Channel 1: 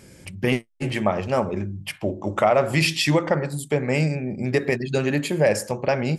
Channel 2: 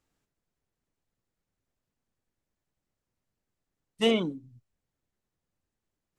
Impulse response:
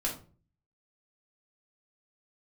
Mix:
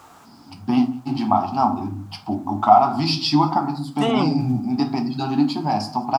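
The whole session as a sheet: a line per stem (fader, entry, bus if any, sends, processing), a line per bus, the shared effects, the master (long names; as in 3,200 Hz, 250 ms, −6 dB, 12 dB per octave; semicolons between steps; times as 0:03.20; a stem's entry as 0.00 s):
−2.0 dB, 0.25 s, send −5 dB, echo send −19.5 dB, drawn EQ curve 170 Hz 0 dB, 270 Hz +11 dB, 520 Hz −25 dB, 770 Hz +4 dB, 1,900 Hz −16 dB, 4,900 Hz +9 dB, 7,000 Hz −13 dB
+2.0 dB, 0.00 s, no send, no echo send, noise gate −51 dBFS, range −9 dB; envelope flattener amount 100%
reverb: on, RT60 0.40 s, pre-delay 3 ms
echo: single-tap delay 185 ms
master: high-pass filter 98 Hz; flat-topped bell 980 Hz +12.5 dB 1.2 octaves; flanger 0.53 Hz, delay 1.9 ms, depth 8.5 ms, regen −69%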